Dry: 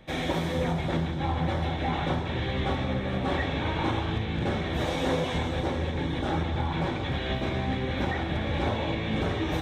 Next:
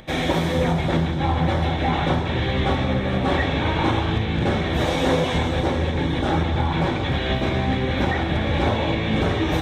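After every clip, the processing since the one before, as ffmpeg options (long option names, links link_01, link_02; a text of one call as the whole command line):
ffmpeg -i in.wav -af "acompressor=mode=upward:threshold=-50dB:ratio=2.5,volume=7dB" out.wav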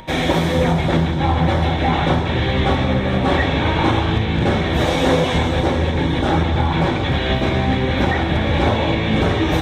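ffmpeg -i in.wav -af "aeval=exprs='val(0)+0.00631*sin(2*PI*940*n/s)':channel_layout=same,volume=4dB" out.wav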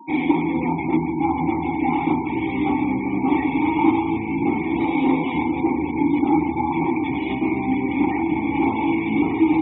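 ffmpeg -i in.wav -filter_complex "[0:a]asplit=3[link_01][link_02][link_03];[link_01]bandpass=frequency=300:width_type=q:width=8,volume=0dB[link_04];[link_02]bandpass=frequency=870:width_type=q:width=8,volume=-6dB[link_05];[link_03]bandpass=frequency=2240:width_type=q:width=8,volume=-9dB[link_06];[link_04][link_05][link_06]amix=inputs=3:normalize=0,afftfilt=real='re*gte(hypot(re,im),0.00891)':imag='im*gte(hypot(re,im),0.00891)':win_size=1024:overlap=0.75,volume=8.5dB" out.wav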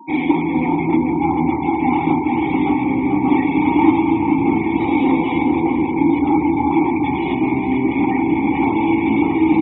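ffmpeg -i in.wav -filter_complex "[0:a]asplit=2[link_01][link_02];[link_02]adelay=437,lowpass=frequency=1400:poles=1,volume=-3.5dB,asplit=2[link_03][link_04];[link_04]adelay=437,lowpass=frequency=1400:poles=1,volume=0.42,asplit=2[link_05][link_06];[link_06]adelay=437,lowpass=frequency=1400:poles=1,volume=0.42,asplit=2[link_07][link_08];[link_08]adelay=437,lowpass=frequency=1400:poles=1,volume=0.42,asplit=2[link_09][link_10];[link_10]adelay=437,lowpass=frequency=1400:poles=1,volume=0.42[link_11];[link_01][link_03][link_05][link_07][link_09][link_11]amix=inputs=6:normalize=0,volume=2.5dB" out.wav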